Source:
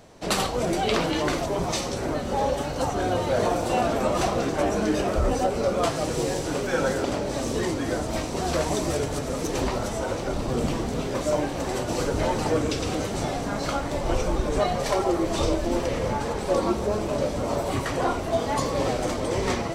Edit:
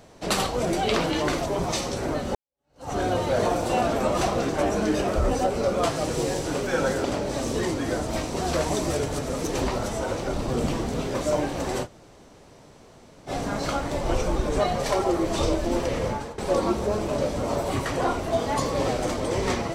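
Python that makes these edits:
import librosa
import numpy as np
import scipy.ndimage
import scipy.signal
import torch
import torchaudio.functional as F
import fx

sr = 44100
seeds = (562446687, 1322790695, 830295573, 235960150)

y = fx.edit(x, sr, fx.fade_in_span(start_s=2.35, length_s=0.57, curve='exp'),
    fx.room_tone_fill(start_s=11.85, length_s=1.44, crossfade_s=0.06),
    fx.fade_out_to(start_s=16.05, length_s=0.33, floor_db=-16.5), tone=tone)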